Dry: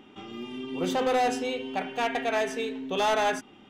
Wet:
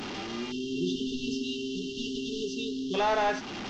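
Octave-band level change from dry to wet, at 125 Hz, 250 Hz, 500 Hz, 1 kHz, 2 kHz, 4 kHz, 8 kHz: +2.0, +1.5, −4.5, −5.0, −4.5, +0.5, −2.5 decibels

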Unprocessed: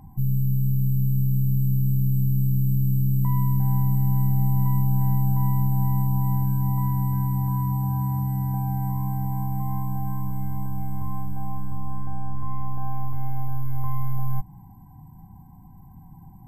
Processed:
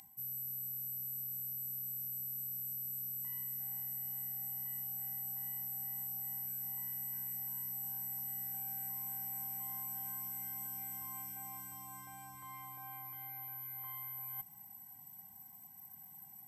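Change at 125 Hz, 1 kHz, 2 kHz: −36.5 dB, −19.0 dB, can't be measured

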